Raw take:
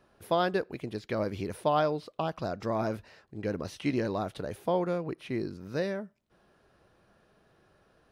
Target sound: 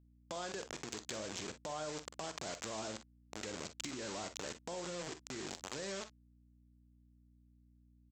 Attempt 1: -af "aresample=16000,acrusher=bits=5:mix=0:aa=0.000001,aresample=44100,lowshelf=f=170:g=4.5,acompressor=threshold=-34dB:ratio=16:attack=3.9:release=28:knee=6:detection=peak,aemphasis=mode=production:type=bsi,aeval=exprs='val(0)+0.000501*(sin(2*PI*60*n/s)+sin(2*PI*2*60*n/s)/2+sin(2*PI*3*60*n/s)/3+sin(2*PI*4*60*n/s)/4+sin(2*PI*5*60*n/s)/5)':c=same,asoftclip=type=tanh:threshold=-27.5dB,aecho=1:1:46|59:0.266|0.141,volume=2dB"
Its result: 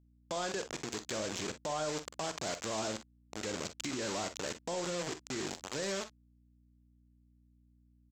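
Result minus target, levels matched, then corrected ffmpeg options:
compressor: peak gain reduction -7 dB
-af "aresample=16000,acrusher=bits=5:mix=0:aa=0.000001,aresample=44100,lowshelf=f=170:g=4.5,acompressor=threshold=-41.5dB:ratio=16:attack=3.9:release=28:knee=6:detection=peak,aemphasis=mode=production:type=bsi,aeval=exprs='val(0)+0.000501*(sin(2*PI*60*n/s)+sin(2*PI*2*60*n/s)/2+sin(2*PI*3*60*n/s)/3+sin(2*PI*4*60*n/s)/4+sin(2*PI*5*60*n/s)/5)':c=same,asoftclip=type=tanh:threshold=-27.5dB,aecho=1:1:46|59:0.266|0.141,volume=2dB"

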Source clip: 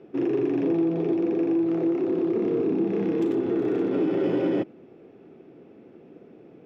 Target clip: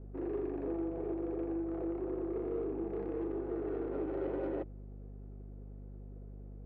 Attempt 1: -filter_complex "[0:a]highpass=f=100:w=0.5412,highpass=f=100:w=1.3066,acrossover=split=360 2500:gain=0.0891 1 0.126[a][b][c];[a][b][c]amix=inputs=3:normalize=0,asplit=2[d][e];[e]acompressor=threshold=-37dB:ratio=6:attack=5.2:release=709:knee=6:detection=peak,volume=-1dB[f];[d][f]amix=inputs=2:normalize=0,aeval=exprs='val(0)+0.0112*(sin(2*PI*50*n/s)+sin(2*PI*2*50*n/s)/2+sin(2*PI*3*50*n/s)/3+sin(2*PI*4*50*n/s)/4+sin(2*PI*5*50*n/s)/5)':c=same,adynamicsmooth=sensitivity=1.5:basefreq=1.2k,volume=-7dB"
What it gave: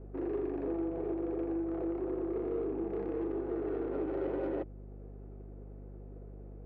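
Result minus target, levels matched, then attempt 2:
compressor: peak gain reduction +13 dB
-filter_complex "[0:a]highpass=f=100:w=0.5412,highpass=f=100:w=1.3066,acrossover=split=360 2500:gain=0.0891 1 0.126[a][b][c];[a][b][c]amix=inputs=3:normalize=0,aeval=exprs='val(0)+0.0112*(sin(2*PI*50*n/s)+sin(2*PI*2*50*n/s)/2+sin(2*PI*3*50*n/s)/3+sin(2*PI*4*50*n/s)/4+sin(2*PI*5*50*n/s)/5)':c=same,adynamicsmooth=sensitivity=1.5:basefreq=1.2k,volume=-7dB"

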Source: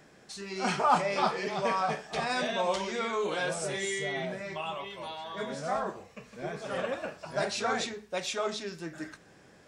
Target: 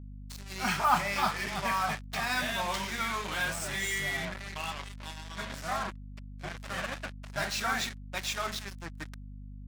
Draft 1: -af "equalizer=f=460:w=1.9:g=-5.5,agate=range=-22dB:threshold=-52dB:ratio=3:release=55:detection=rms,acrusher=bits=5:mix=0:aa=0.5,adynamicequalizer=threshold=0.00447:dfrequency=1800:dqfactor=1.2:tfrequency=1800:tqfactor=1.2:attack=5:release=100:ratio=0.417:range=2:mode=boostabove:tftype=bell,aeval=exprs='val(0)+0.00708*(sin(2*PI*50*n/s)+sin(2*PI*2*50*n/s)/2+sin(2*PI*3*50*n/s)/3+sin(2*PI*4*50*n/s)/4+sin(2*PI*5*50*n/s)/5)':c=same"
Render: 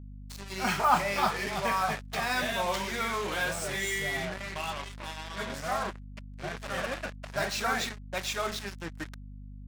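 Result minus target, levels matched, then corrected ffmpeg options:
500 Hz band +4.5 dB
-af "equalizer=f=460:w=1.9:g=-16,agate=range=-22dB:threshold=-52dB:ratio=3:release=55:detection=rms,acrusher=bits=5:mix=0:aa=0.5,adynamicequalizer=threshold=0.00447:dfrequency=1800:dqfactor=1.2:tfrequency=1800:tqfactor=1.2:attack=5:release=100:ratio=0.417:range=2:mode=boostabove:tftype=bell,aeval=exprs='val(0)+0.00708*(sin(2*PI*50*n/s)+sin(2*PI*2*50*n/s)/2+sin(2*PI*3*50*n/s)/3+sin(2*PI*4*50*n/s)/4+sin(2*PI*5*50*n/s)/5)':c=same"

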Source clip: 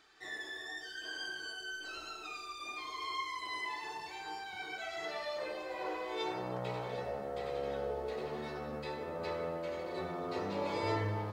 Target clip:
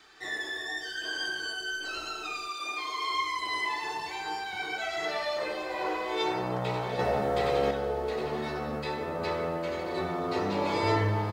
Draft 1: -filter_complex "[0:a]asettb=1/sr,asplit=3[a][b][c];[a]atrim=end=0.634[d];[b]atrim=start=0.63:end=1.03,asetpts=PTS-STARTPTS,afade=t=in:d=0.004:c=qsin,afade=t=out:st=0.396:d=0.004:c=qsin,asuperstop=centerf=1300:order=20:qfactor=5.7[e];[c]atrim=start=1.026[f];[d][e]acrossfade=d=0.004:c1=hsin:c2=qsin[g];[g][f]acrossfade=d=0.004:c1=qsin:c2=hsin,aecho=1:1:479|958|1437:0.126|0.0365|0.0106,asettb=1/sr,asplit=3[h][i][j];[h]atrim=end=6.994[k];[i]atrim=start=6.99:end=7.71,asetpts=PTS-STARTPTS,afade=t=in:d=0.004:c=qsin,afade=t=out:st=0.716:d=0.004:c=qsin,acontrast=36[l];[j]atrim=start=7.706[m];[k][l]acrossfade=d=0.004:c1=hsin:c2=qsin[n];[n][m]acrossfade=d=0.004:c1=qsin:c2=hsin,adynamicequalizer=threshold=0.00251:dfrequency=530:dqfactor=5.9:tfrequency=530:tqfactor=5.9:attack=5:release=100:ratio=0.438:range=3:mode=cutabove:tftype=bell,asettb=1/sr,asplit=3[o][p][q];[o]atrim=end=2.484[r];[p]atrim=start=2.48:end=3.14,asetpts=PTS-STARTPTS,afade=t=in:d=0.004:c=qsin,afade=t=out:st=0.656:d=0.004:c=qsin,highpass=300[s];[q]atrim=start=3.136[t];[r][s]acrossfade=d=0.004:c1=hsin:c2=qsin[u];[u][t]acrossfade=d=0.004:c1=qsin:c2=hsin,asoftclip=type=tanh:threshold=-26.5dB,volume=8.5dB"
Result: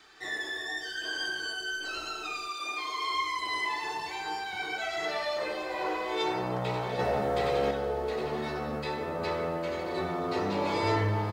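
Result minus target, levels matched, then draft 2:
soft clip: distortion +15 dB
-filter_complex "[0:a]asettb=1/sr,asplit=3[a][b][c];[a]atrim=end=0.634[d];[b]atrim=start=0.63:end=1.03,asetpts=PTS-STARTPTS,afade=t=in:d=0.004:c=qsin,afade=t=out:st=0.396:d=0.004:c=qsin,asuperstop=centerf=1300:order=20:qfactor=5.7[e];[c]atrim=start=1.026[f];[d][e]acrossfade=d=0.004:c1=hsin:c2=qsin[g];[g][f]acrossfade=d=0.004:c1=qsin:c2=hsin,aecho=1:1:479|958|1437:0.126|0.0365|0.0106,asettb=1/sr,asplit=3[h][i][j];[h]atrim=end=6.994[k];[i]atrim=start=6.99:end=7.71,asetpts=PTS-STARTPTS,afade=t=in:d=0.004:c=qsin,afade=t=out:st=0.716:d=0.004:c=qsin,acontrast=36[l];[j]atrim=start=7.706[m];[k][l]acrossfade=d=0.004:c1=hsin:c2=qsin[n];[n][m]acrossfade=d=0.004:c1=qsin:c2=hsin,adynamicequalizer=threshold=0.00251:dfrequency=530:dqfactor=5.9:tfrequency=530:tqfactor=5.9:attack=5:release=100:ratio=0.438:range=3:mode=cutabove:tftype=bell,asettb=1/sr,asplit=3[o][p][q];[o]atrim=end=2.484[r];[p]atrim=start=2.48:end=3.14,asetpts=PTS-STARTPTS,afade=t=in:d=0.004:c=qsin,afade=t=out:st=0.656:d=0.004:c=qsin,highpass=300[s];[q]atrim=start=3.136[t];[r][s]acrossfade=d=0.004:c1=hsin:c2=qsin[u];[u][t]acrossfade=d=0.004:c1=qsin:c2=hsin,asoftclip=type=tanh:threshold=-18dB,volume=8.5dB"

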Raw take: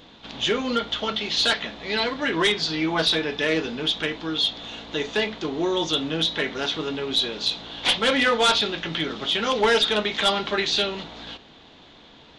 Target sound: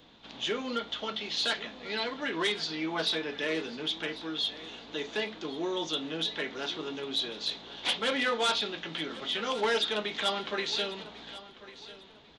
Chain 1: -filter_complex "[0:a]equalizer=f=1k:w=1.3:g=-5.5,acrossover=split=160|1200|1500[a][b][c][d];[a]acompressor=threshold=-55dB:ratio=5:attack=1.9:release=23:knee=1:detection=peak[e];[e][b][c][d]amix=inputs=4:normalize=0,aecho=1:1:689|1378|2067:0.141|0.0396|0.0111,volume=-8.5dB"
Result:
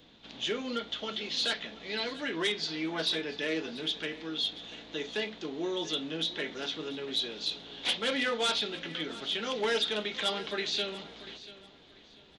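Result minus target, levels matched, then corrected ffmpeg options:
echo 0.406 s early; 1000 Hz band -3.5 dB
-filter_complex "[0:a]acrossover=split=160|1200|1500[a][b][c][d];[a]acompressor=threshold=-55dB:ratio=5:attack=1.9:release=23:knee=1:detection=peak[e];[e][b][c][d]amix=inputs=4:normalize=0,aecho=1:1:1095|2190|3285:0.141|0.0396|0.0111,volume=-8.5dB"

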